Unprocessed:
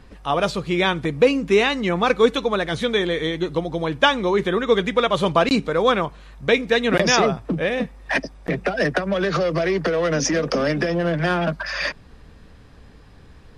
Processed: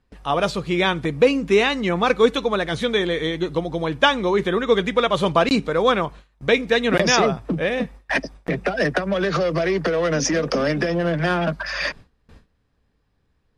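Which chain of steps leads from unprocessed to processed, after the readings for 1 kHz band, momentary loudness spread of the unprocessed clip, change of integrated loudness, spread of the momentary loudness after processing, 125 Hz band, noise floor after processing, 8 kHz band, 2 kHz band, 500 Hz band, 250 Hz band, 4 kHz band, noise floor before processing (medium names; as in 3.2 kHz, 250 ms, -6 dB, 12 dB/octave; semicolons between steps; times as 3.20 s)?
0.0 dB, 7 LU, 0.0 dB, 7 LU, 0.0 dB, -67 dBFS, 0.0 dB, 0.0 dB, 0.0 dB, 0.0 dB, 0.0 dB, -47 dBFS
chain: gate with hold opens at -33 dBFS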